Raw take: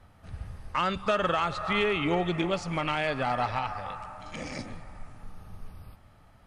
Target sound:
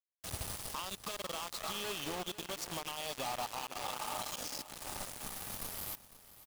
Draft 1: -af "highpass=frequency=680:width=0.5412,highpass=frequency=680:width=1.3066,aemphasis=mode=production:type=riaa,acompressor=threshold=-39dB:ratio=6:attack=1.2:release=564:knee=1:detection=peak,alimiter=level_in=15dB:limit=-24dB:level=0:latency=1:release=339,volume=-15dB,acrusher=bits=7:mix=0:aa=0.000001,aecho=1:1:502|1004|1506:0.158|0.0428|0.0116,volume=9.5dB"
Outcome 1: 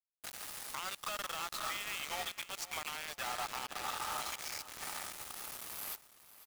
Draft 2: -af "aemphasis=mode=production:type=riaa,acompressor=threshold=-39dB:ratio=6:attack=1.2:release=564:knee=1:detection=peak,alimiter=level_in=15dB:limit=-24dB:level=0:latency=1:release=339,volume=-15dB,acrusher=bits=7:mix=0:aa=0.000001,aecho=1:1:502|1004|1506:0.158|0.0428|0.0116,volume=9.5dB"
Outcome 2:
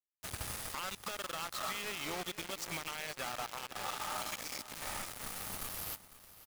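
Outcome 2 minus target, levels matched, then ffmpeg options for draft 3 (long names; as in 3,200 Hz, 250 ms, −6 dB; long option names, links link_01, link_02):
2,000 Hz band +3.5 dB
-af "aemphasis=mode=production:type=riaa,acompressor=threshold=-39dB:ratio=6:attack=1.2:release=564:knee=1:detection=peak,asuperstop=centerf=1800:order=8:qfactor=1.2,alimiter=level_in=15dB:limit=-24dB:level=0:latency=1:release=339,volume=-15dB,acrusher=bits=7:mix=0:aa=0.000001,aecho=1:1:502|1004|1506:0.158|0.0428|0.0116,volume=9.5dB"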